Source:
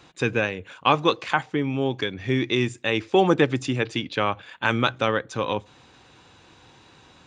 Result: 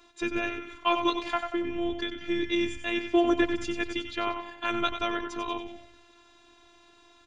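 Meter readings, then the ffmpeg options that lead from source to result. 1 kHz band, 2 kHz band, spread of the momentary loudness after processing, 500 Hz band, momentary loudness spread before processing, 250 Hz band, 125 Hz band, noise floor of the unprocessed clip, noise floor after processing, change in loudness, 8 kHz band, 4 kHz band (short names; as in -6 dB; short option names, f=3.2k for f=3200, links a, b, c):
-5.5 dB, -6.5 dB, 9 LU, -6.5 dB, 7 LU, -3.0 dB, -19.5 dB, -54 dBFS, -59 dBFS, -5.5 dB, -5.0 dB, -5.0 dB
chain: -filter_complex "[0:a]asplit=7[a][b][c][d][e][f][g];[b]adelay=93,afreqshift=-98,volume=-8.5dB[h];[c]adelay=186,afreqshift=-196,volume=-14.5dB[i];[d]adelay=279,afreqshift=-294,volume=-20.5dB[j];[e]adelay=372,afreqshift=-392,volume=-26.6dB[k];[f]adelay=465,afreqshift=-490,volume=-32.6dB[l];[g]adelay=558,afreqshift=-588,volume=-38.6dB[m];[a][h][i][j][k][l][m]amix=inputs=7:normalize=0,afftfilt=real='hypot(re,im)*cos(PI*b)':imag='0':win_size=512:overlap=0.75,volume=-2.5dB"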